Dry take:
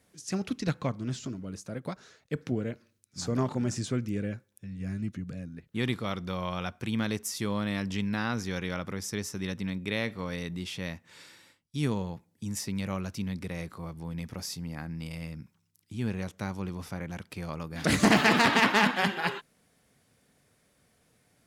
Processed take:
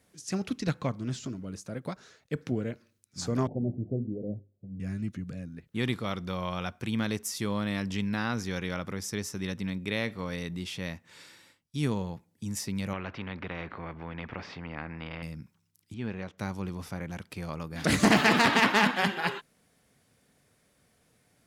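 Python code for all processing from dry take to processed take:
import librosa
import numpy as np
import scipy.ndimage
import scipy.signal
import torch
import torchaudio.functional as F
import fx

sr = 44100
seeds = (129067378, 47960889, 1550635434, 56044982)

y = fx.chain(x, sr, fx.steep_lowpass(hz=740.0, slope=72),
    fx.hum_notches(base_hz=50, count=8), at=(3.47, 4.8))
y = fx.chain(y, sr, fx.lowpass(hz=2300.0, slope=24),
    fx.spectral_comp(ratio=2.0), at=(12.93, 15.23))
y = fx.chain(y, sr, fx.lowpass(hz=3300.0, slope=12),
    fx.low_shelf(hz=200.0, db=-7.5), at=(15.94, 16.38))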